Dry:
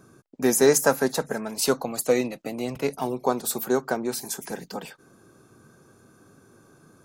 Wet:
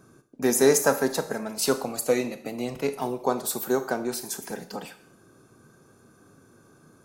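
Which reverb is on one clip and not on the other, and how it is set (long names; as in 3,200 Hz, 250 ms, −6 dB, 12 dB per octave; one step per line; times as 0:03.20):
four-comb reverb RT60 0.58 s, combs from 26 ms, DRR 10 dB
level −1.5 dB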